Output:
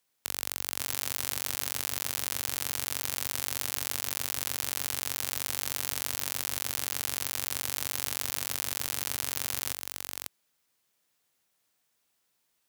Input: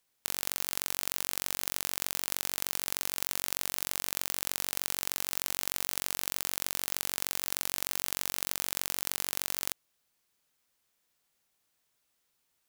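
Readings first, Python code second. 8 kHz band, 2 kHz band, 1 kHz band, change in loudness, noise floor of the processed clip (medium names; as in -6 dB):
+1.5 dB, +1.5 dB, +1.5 dB, +1.0 dB, -76 dBFS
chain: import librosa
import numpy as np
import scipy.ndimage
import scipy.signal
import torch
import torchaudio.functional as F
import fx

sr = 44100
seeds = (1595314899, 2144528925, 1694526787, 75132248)

p1 = scipy.signal.sosfilt(scipy.signal.butter(2, 72.0, 'highpass', fs=sr, output='sos'), x)
y = p1 + fx.echo_single(p1, sr, ms=545, db=-4.0, dry=0)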